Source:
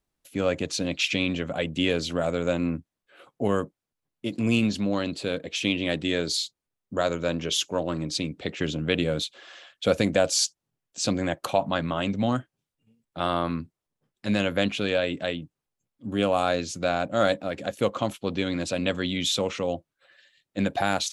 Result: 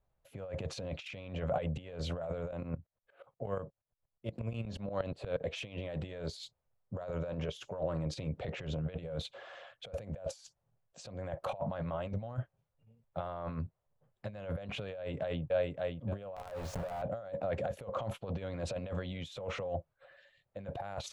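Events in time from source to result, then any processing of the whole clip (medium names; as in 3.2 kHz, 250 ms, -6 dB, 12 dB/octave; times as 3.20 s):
2.51–5.41 s: sawtooth tremolo in dB swelling 8.4 Hz, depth 23 dB
14.93–15.42 s: echo throw 570 ms, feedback 25%, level -9 dB
16.36–17.02 s: companded quantiser 2-bit
whole clip: compressor with a negative ratio -31 dBFS, ratio -0.5; FFT filter 120 Hz 0 dB, 300 Hz -18 dB, 550 Hz 0 dB, 5.7 kHz -22 dB; transient shaper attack -3 dB, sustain +3 dB; trim +1 dB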